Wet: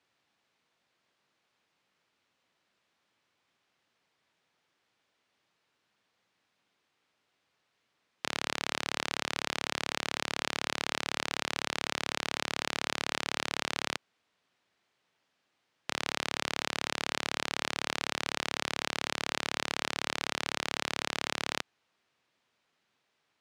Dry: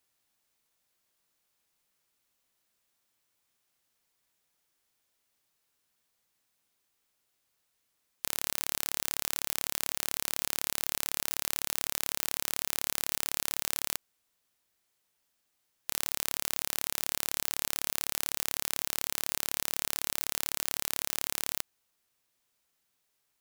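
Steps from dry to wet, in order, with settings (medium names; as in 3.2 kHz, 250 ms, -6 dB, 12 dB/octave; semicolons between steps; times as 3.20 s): band-pass 110–3500 Hz; trim +7 dB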